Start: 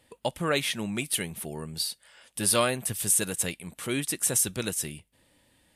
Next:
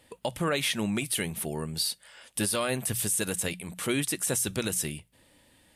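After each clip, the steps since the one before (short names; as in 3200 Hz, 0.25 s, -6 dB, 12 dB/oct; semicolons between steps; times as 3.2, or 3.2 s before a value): notches 60/120/180 Hz; limiter -21.5 dBFS, peak gain reduction 10.5 dB; gain +3.5 dB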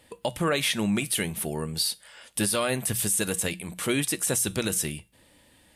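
resonator 67 Hz, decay 0.3 s, harmonics odd, mix 40%; gain +6 dB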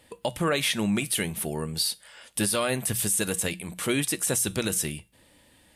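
nothing audible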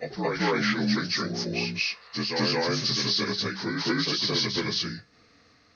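inharmonic rescaling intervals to 80%; reverse echo 0.223 s -3.5 dB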